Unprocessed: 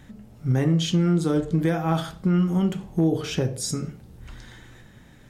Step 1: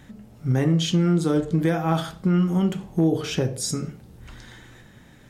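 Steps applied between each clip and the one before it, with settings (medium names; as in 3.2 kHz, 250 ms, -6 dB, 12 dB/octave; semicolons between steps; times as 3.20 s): bass shelf 79 Hz -5.5 dB; trim +1.5 dB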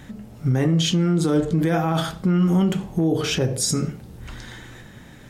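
peak limiter -18 dBFS, peak gain reduction 8.5 dB; trim +6 dB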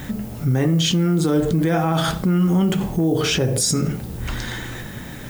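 in parallel at -1.5 dB: compressor with a negative ratio -30 dBFS, ratio -1; on the sum: added noise violet -46 dBFS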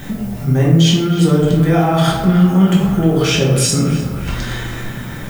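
band-passed feedback delay 307 ms, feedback 76%, band-pass 1.4 kHz, level -9 dB; simulated room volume 180 m³, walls mixed, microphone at 1.2 m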